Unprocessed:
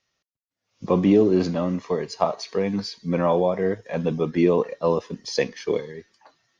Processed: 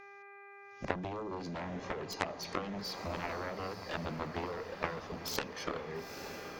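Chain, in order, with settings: mains buzz 400 Hz, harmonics 6, -53 dBFS -1 dB/octave; compression 10:1, threshold -31 dBFS, peak gain reduction 19 dB; Chebyshev shaper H 3 -12 dB, 7 -21 dB, 8 -41 dB, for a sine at -16.5 dBFS; echo that smears into a reverb 927 ms, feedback 55%, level -9 dB; transformer saturation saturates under 1.4 kHz; trim +8.5 dB

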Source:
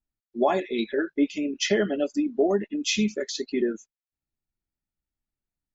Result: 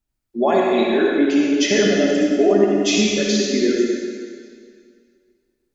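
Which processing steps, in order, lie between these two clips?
in parallel at +1.5 dB: peak limiter -22 dBFS, peak gain reduction 11 dB; on the sum: reverberation RT60 2.1 s, pre-delay 53 ms, DRR -2.5 dB

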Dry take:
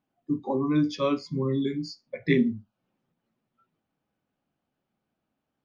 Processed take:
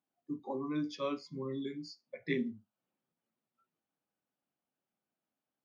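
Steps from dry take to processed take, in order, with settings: high-pass 270 Hz 6 dB/octave; trim -9 dB

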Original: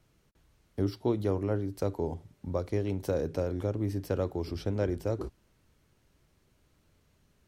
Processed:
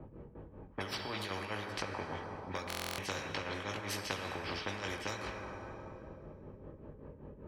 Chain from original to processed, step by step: tremolo 5.1 Hz, depth 90%; chorus voices 6, 0.52 Hz, delay 20 ms, depth 1.4 ms; level-controlled noise filter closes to 320 Hz, open at -31 dBFS; high-order bell 1.3 kHz +8 dB 2.8 oct; compression 6:1, threshold -43 dBFS, peak gain reduction 19 dB; treble shelf 9.9 kHz -6.5 dB; comb of notches 700 Hz; plate-style reverb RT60 2.3 s, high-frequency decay 0.9×, DRR 10 dB; buffer glitch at 2.68 s, samples 1024, times 12; spectrum-flattening compressor 4:1; trim +13.5 dB

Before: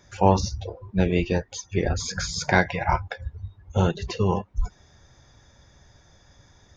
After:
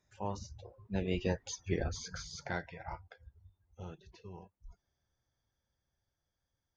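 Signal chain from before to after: Doppler pass-by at 1.49 s, 15 m/s, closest 4.2 m; trim -7 dB

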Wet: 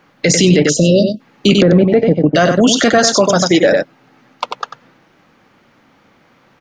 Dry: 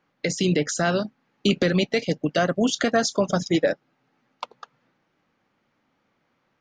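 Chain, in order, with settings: 0.58–0.98 s: treble shelf 4.3 kHz -11.5 dB; 1.55–2.36 s: low-pass that closes with the level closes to 900 Hz, closed at -20 dBFS; 2.98–3.63 s: high-pass 320 Hz 6 dB/octave; delay 94 ms -10.5 dB; 0.69–1.20 s: spectral selection erased 660–2600 Hz; loudness maximiser +19.5 dB; trim -1 dB

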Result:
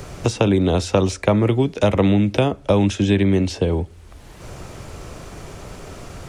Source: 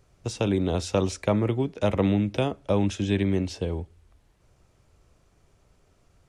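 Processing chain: three bands compressed up and down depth 70%; trim +7.5 dB

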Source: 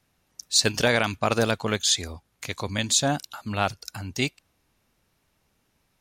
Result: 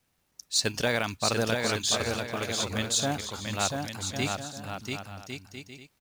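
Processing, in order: companded quantiser 6-bit; bouncing-ball echo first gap 690 ms, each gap 0.6×, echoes 5; trim -5.5 dB

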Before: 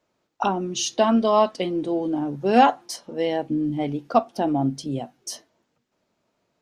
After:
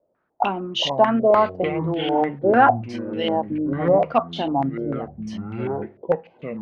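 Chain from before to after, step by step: ever faster or slower copies 228 ms, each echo -6 st, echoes 2, each echo -6 dB; step-sequenced low-pass 6.7 Hz 580–3100 Hz; trim -2.5 dB

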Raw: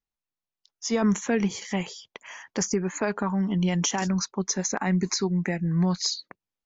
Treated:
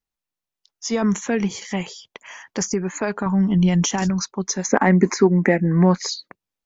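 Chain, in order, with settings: 4.66–6.09 s: graphic EQ 125/250/500/1000/2000/4000 Hz -4/+11/+10/+5/+9/-10 dB; in parallel at -12 dB: saturation -15.5 dBFS, distortion -11 dB; 3.26–4.10 s: on the sum: bass shelf 180 Hz +10 dB; trim +1 dB

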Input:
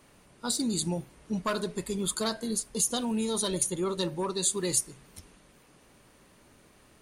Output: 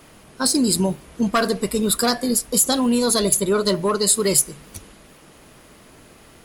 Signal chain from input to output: in parallel at -6 dB: hard clipper -24.5 dBFS, distortion -15 dB; on the sum: speed mistake 44.1 kHz file played as 48 kHz; trim +7.5 dB

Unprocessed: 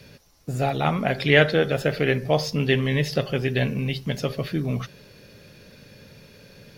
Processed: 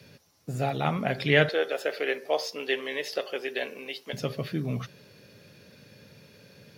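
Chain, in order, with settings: high-pass 83 Hz 24 dB/octave, from 1.49 s 370 Hz, from 4.13 s 86 Hz; trim -4.5 dB

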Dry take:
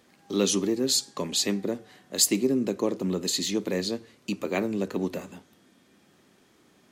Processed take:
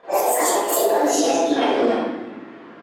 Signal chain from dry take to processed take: gliding tape speed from 198% -> 86%; high-pass 380 Hz 12 dB/octave; level-controlled noise filter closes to 1.7 kHz, open at -21 dBFS; treble shelf 2.6 kHz -5 dB; compression 8:1, threshold -37 dBFS, peak gain reduction 16.5 dB; plain phase-vocoder stretch 0.58×; delay 334 ms -23 dB; reverberation RT60 1.0 s, pre-delay 30 ms, DRR -13.5 dB; loudness maximiser +18.5 dB; trim -7.5 dB

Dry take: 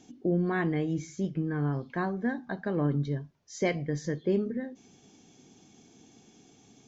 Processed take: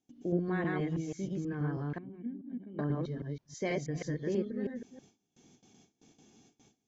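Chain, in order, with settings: chunks repeated in reverse 161 ms, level -0.5 dB; 1.98–2.79 s: cascade formant filter i; gate with hold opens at -44 dBFS; trim -7 dB

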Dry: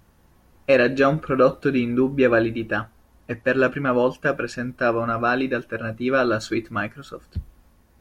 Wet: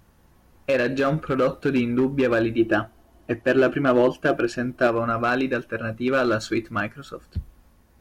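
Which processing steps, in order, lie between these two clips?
peak limiter -11 dBFS, peak gain reduction 6 dB; overload inside the chain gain 14.5 dB; 2.58–4.87 s: small resonant body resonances 340/670/3000 Hz, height 11 dB

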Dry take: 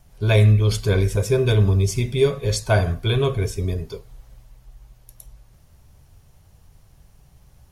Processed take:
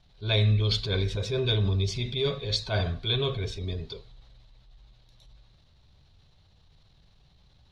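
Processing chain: transient shaper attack -7 dB, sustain +3 dB; resonant low-pass 3.9 kHz, resonance Q 6.5; trim -8 dB

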